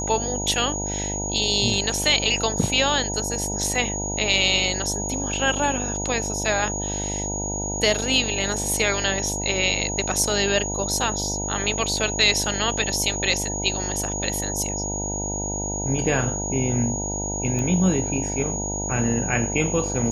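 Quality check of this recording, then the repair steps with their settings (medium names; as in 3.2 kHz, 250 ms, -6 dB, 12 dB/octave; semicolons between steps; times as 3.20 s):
buzz 50 Hz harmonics 19 -30 dBFS
whine 6.7 kHz -28 dBFS
17.59 s: pop -16 dBFS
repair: de-click; de-hum 50 Hz, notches 19; band-stop 6.7 kHz, Q 30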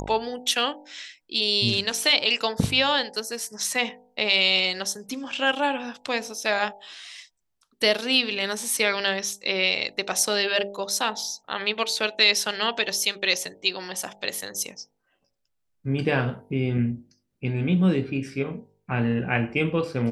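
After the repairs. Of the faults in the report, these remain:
nothing left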